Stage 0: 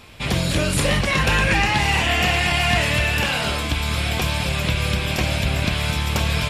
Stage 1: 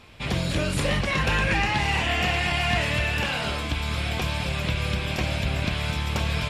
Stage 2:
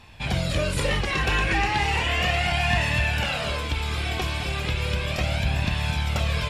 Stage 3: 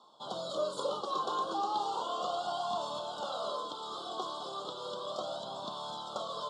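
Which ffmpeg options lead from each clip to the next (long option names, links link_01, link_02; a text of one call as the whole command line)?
ffmpeg -i in.wav -af "highshelf=frequency=8000:gain=-9.5,volume=-4.5dB" out.wav
ffmpeg -i in.wav -af "flanger=delay=1.1:depth=1.6:regen=32:speed=0.35:shape=sinusoidal,volume=4dB" out.wav
ffmpeg -i in.wav -af "asuperstop=centerf=2100:order=12:qfactor=1.1,highpass=frequency=260:width=0.5412,highpass=frequency=260:width=1.3066,equalizer=frequency=270:width_type=q:width=4:gain=-6,equalizer=frequency=590:width_type=q:width=4:gain=4,equalizer=frequency=1100:width_type=q:width=4:gain=7,equalizer=frequency=1600:width_type=q:width=4:gain=3,equalizer=frequency=5800:width_type=q:width=4:gain=-7,lowpass=frequency=7500:width=0.5412,lowpass=frequency=7500:width=1.3066,volume=-8dB" out.wav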